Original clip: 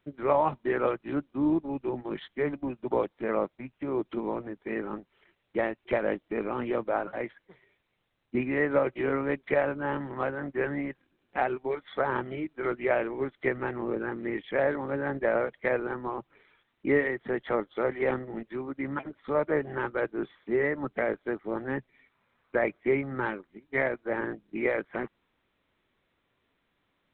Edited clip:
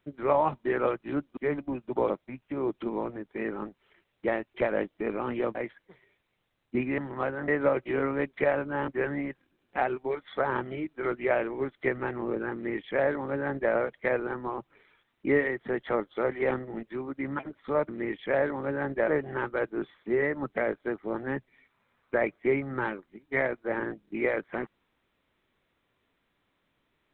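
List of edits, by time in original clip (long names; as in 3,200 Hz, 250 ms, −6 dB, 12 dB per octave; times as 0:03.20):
0:01.37–0:02.32: remove
0:03.05–0:03.41: remove
0:06.86–0:07.15: remove
0:09.98–0:10.48: move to 0:08.58
0:14.14–0:15.33: duplicate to 0:19.49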